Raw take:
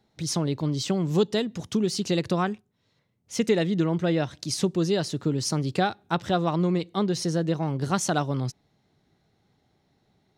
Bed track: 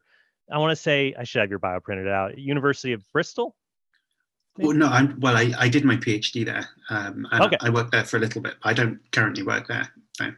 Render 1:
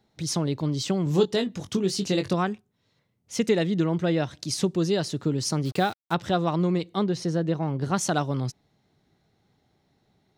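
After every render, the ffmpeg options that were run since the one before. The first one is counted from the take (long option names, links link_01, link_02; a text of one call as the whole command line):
ffmpeg -i in.wav -filter_complex "[0:a]asettb=1/sr,asplit=3[link_01][link_02][link_03];[link_01]atrim=end=1.044[link_04];[link_02]atrim=start=1.04:end=2.34,asetpts=PTS-STARTPTS,afade=type=in:duration=0.004:curve=qsin,afade=type=out:start_time=1.296:duration=0.004:curve=qsin,asplit=2[link_05][link_06];[link_06]adelay=21,volume=-7.5dB[link_07];[link_05][link_07]amix=inputs=2:normalize=0,atrim=end_sample=57330[link_08];[link_03]atrim=start=2.336[link_09];[link_04][link_08]acrossfade=duration=0.004:curve1=hsin:curve2=qsin[link_10];[link_10][link_09]acrossfade=duration=0.004:curve1=qsin:curve2=hsin,asplit=3[link_11][link_12][link_13];[link_11]afade=type=out:start_time=5.64:duration=0.02[link_14];[link_12]acrusher=bits=6:mix=0:aa=0.5,afade=type=in:start_time=5.64:duration=0.02,afade=type=out:start_time=6.13:duration=0.02[link_15];[link_13]afade=type=in:start_time=6.13:duration=0.02[link_16];[link_14][link_15][link_16]amix=inputs=3:normalize=0,asettb=1/sr,asplit=3[link_17][link_18][link_19];[link_17]atrim=end=7.044[link_20];[link_18]atrim=start=7.04:end=7.97,asetpts=PTS-STARTPTS,afade=type=in:duration=0.004:curve=qsin,afade=type=out:start_time=0.926:duration=0.004:curve=qsin,highshelf=frequency=4900:gain=-11[link_21];[link_19]atrim=start=7.966[link_22];[link_20][link_21]acrossfade=duration=0.004:curve1=hsin:curve2=qsin[link_23];[link_23][link_22]acrossfade=duration=0.004:curve1=qsin:curve2=hsin" out.wav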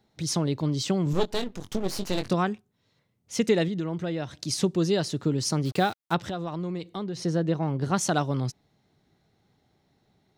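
ffmpeg -i in.wav -filter_complex "[0:a]asettb=1/sr,asplit=3[link_01][link_02][link_03];[link_01]atrim=end=1.134[link_04];[link_02]atrim=start=1.13:end=2.3,asetpts=PTS-STARTPTS,afade=type=in:duration=0.004:curve=qsin,afade=type=out:start_time=1.166:duration=0.004:curve=qsin,aeval=exprs='max(val(0),0)':channel_layout=same[link_05];[link_03]atrim=start=2.296[link_06];[link_04][link_05]acrossfade=duration=0.004:curve1=hsin:curve2=qsin[link_07];[link_07][link_06]acrossfade=duration=0.004:curve1=qsin:curve2=hsin,asettb=1/sr,asplit=3[link_08][link_09][link_10];[link_08]atrim=end=3.684[link_11];[link_09]atrim=start=3.68:end=4.33,asetpts=PTS-STARTPTS,afade=type=in:duration=0.004:curve=qsin,afade=type=out:start_time=0.646:duration=0.004:curve=qsin,acompressor=threshold=-31dB:ratio=2:attack=3.2:release=140:knee=1:detection=peak[link_12];[link_10]atrim=start=4.326[link_13];[link_11][link_12]acrossfade=duration=0.004:curve1=hsin:curve2=qsin[link_14];[link_14][link_13]acrossfade=duration=0.004:curve1=qsin:curve2=hsin,asettb=1/sr,asplit=3[link_15][link_16][link_17];[link_15]atrim=end=6.184[link_18];[link_16]atrim=start=6.18:end=7.2,asetpts=PTS-STARTPTS,afade=type=in:duration=0.004:curve=qsin,afade=type=out:start_time=1.016:duration=0.004:curve=qsin,acompressor=threshold=-31dB:ratio=3:attack=3.2:release=140:knee=1:detection=peak[link_19];[link_17]atrim=start=7.196[link_20];[link_18][link_19]acrossfade=duration=0.004:curve1=hsin:curve2=qsin[link_21];[link_21][link_20]acrossfade=duration=0.004:curve1=qsin:curve2=hsin" out.wav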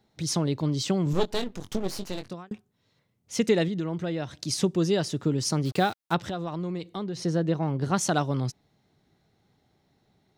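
ffmpeg -i in.wav -filter_complex "[0:a]asettb=1/sr,asplit=3[link_01][link_02][link_03];[link_01]atrim=end=4.614[link_04];[link_02]atrim=start=4.61:end=5.45,asetpts=PTS-STARTPTS,afade=type=in:duration=0.004:curve=qsin,afade=type=out:start_time=0.836:duration=0.004:curve=qsin,bandreject=frequency=4200:width=12[link_05];[link_03]atrim=start=5.446[link_06];[link_04][link_05]acrossfade=duration=0.004:curve1=hsin:curve2=qsin[link_07];[link_07][link_06]acrossfade=duration=0.004:curve1=qsin:curve2=hsin,asplit=2[link_08][link_09];[link_08]atrim=end=2.51,asetpts=PTS-STARTPTS,afade=type=out:start_time=1.75:duration=0.76[link_10];[link_09]atrim=start=2.51,asetpts=PTS-STARTPTS,afade=type=in:duration=0.004:curve=hsin[link_11];[link_10][link_11]concat=n=2:v=0:a=1" out.wav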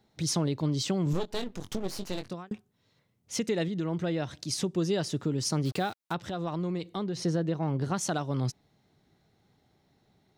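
ffmpeg -i in.wav -af "alimiter=limit=-19.5dB:level=0:latency=1:release=304" out.wav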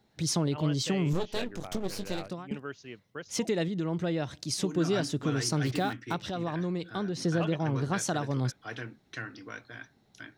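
ffmpeg -i in.wav -i bed.wav -filter_complex "[1:a]volume=-18.5dB[link_01];[0:a][link_01]amix=inputs=2:normalize=0" out.wav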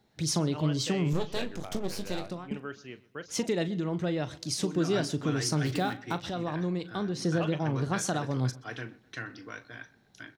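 ffmpeg -i in.wav -filter_complex "[0:a]asplit=2[link_01][link_02];[link_02]adelay=39,volume=-13.5dB[link_03];[link_01][link_03]amix=inputs=2:normalize=0,asplit=2[link_04][link_05];[link_05]adelay=127,lowpass=frequency=3700:poles=1,volume=-21dB,asplit=2[link_06][link_07];[link_07]adelay=127,lowpass=frequency=3700:poles=1,volume=0.44,asplit=2[link_08][link_09];[link_09]adelay=127,lowpass=frequency=3700:poles=1,volume=0.44[link_10];[link_04][link_06][link_08][link_10]amix=inputs=4:normalize=0" out.wav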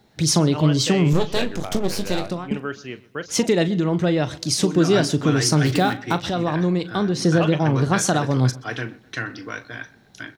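ffmpeg -i in.wav -af "volume=10.5dB" out.wav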